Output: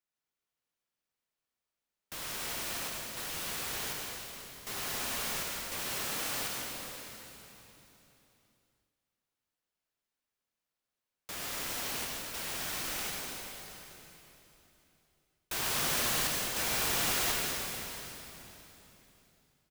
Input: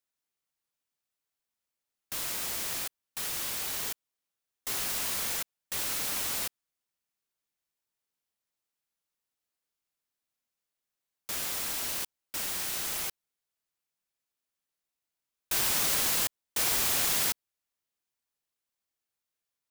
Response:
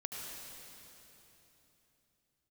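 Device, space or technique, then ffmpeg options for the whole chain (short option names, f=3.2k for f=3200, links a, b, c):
swimming-pool hall: -filter_complex "[0:a]asettb=1/sr,asplit=3[a][b][c];[a]atrim=end=5.804[d];[b]atrim=start=5.8:end=6.27,asetpts=PTS-STARTPTS,afade=t=in:d=0.004:c=qsin,afade=t=out:st=0.466:d=0.004:c=qsin,highpass=f=100:w=0.5412,highpass=f=100:w=1.3066[e];[c]atrim=start=6.266[f];[d][e]acrossfade=d=0.004:c1=hsin:c2=qsin[g];[g][f]acrossfade=d=0.004:c1=qsin:c2=hsin[h];[1:a]atrim=start_sample=2205[i];[h][i]afir=irnorm=-1:irlink=0,highshelf=f=4.6k:g=-7,aecho=1:1:674:0.1,volume=1.5dB"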